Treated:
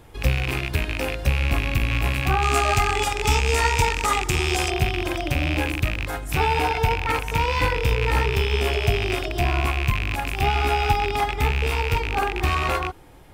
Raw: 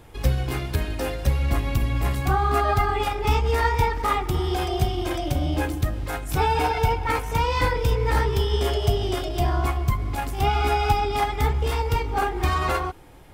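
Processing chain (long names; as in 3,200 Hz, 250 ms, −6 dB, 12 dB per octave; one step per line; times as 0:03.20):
loose part that buzzes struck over −28 dBFS, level −14 dBFS
0:02.42–0:04.71: parametric band 7,300 Hz +15 dB 1.1 octaves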